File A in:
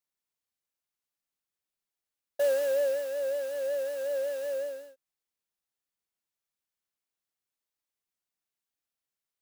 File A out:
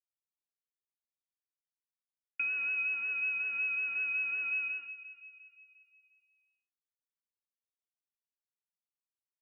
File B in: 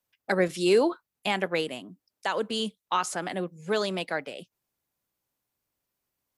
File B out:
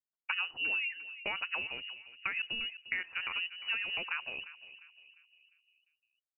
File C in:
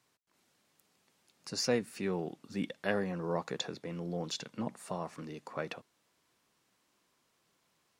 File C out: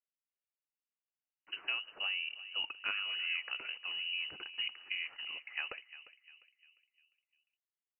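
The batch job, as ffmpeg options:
-filter_complex "[0:a]agate=range=0.0224:threshold=0.00631:ratio=3:detection=peak,acompressor=threshold=0.0251:ratio=6,asplit=2[s0][s1];[s1]adelay=351,lowpass=f=1200:p=1,volume=0.224,asplit=2[s2][s3];[s3]adelay=351,lowpass=f=1200:p=1,volume=0.51,asplit=2[s4][s5];[s5]adelay=351,lowpass=f=1200:p=1,volume=0.51,asplit=2[s6][s7];[s7]adelay=351,lowpass=f=1200:p=1,volume=0.51,asplit=2[s8][s9];[s9]adelay=351,lowpass=f=1200:p=1,volume=0.51[s10];[s2][s4][s6][s8][s10]amix=inputs=5:normalize=0[s11];[s0][s11]amix=inputs=2:normalize=0,lowpass=f=2600:t=q:w=0.5098,lowpass=f=2600:t=q:w=0.6013,lowpass=f=2600:t=q:w=0.9,lowpass=f=2600:t=q:w=2.563,afreqshift=-3100"

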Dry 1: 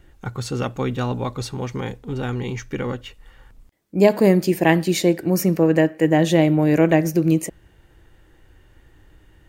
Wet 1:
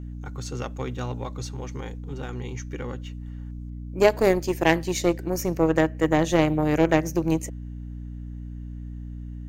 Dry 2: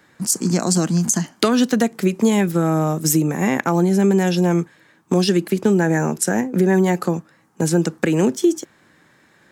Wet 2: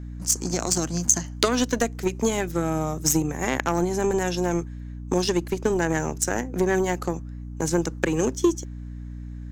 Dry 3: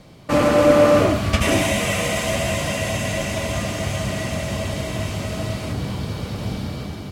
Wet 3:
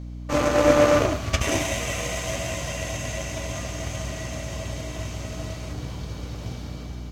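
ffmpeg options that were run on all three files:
-af "aeval=exprs='0.891*(cos(1*acos(clip(val(0)/0.891,-1,1)))-cos(1*PI/2))+0.0708*(cos(3*acos(clip(val(0)/0.891,-1,1)))-cos(3*PI/2))+0.0447*(cos(7*acos(clip(val(0)/0.891,-1,1)))-cos(7*PI/2))':c=same,equalizer=f=200:t=o:w=0.33:g=-11,equalizer=f=6300:t=o:w=0.33:g=8,equalizer=f=10000:t=o:w=0.33:g=-5,aeval=exprs='val(0)+0.0224*(sin(2*PI*60*n/s)+sin(2*PI*2*60*n/s)/2+sin(2*PI*3*60*n/s)/3+sin(2*PI*4*60*n/s)/4+sin(2*PI*5*60*n/s)/5)':c=same,volume=0.891"

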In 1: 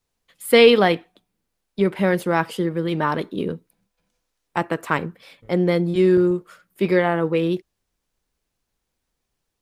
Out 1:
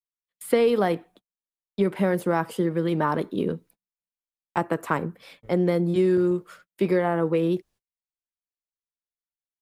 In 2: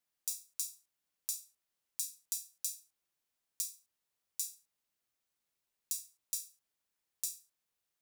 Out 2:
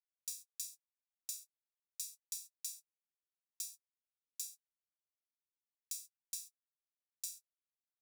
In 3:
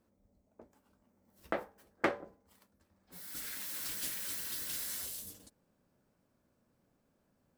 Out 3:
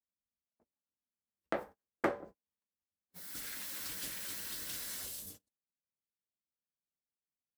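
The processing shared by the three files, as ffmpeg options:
-filter_complex "[0:a]acrossover=split=110|1600|6500[s0][s1][s2][s3];[s0]acompressor=threshold=0.00355:ratio=4[s4];[s1]acompressor=threshold=0.126:ratio=4[s5];[s2]acompressor=threshold=0.00631:ratio=4[s6];[s3]acompressor=threshold=0.00891:ratio=4[s7];[s4][s5][s6][s7]amix=inputs=4:normalize=0,agate=range=0.0178:threshold=0.00282:ratio=16:detection=peak"

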